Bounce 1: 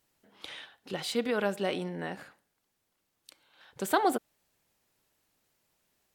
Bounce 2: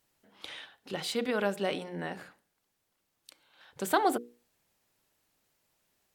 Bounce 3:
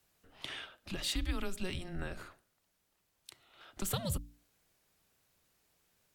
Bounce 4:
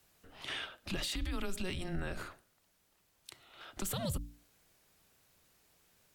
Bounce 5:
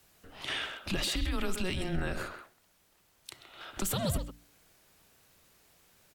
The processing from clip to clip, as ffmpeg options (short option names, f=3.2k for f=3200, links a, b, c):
-af "bandreject=f=60:t=h:w=6,bandreject=f=120:t=h:w=6,bandreject=f=180:t=h:w=6,bandreject=f=240:t=h:w=6,bandreject=f=300:t=h:w=6,bandreject=f=360:t=h:w=6,bandreject=f=420:t=h:w=6,bandreject=f=480:t=h:w=6"
-filter_complex "[0:a]afreqshift=-190,acrossover=split=130|3000[a][b][c];[b]acompressor=threshold=-41dB:ratio=6[d];[a][d][c]amix=inputs=3:normalize=0,volume=1dB"
-af "alimiter=level_in=9dB:limit=-24dB:level=0:latency=1:release=52,volume=-9dB,volume=5dB"
-filter_complex "[0:a]asplit=2[a][b];[b]adelay=130,highpass=300,lowpass=3.4k,asoftclip=type=hard:threshold=-38dB,volume=-6dB[c];[a][c]amix=inputs=2:normalize=0,volume=5dB"